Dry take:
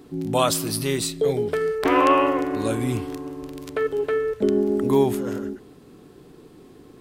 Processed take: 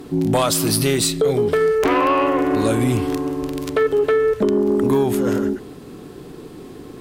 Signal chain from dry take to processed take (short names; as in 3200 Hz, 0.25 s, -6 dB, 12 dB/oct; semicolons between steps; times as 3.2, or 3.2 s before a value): compressor 6:1, threshold -23 dBFS, peak gain reduction 10 dB; sine folder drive 8 dB, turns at -9 dBFS; gain -1.5 dB